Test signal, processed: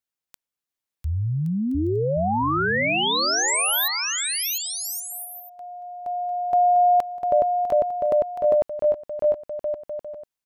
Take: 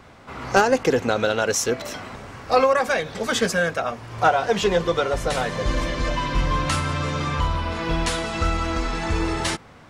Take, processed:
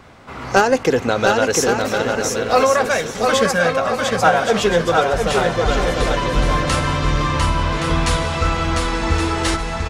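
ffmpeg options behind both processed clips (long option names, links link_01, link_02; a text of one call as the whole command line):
ffmpeg -i in.wav -af "aecho=1:1:700|1120|1372|1523|1614:0.631|0.398|0.251|0.158|0.1,volume=3dB" out.wav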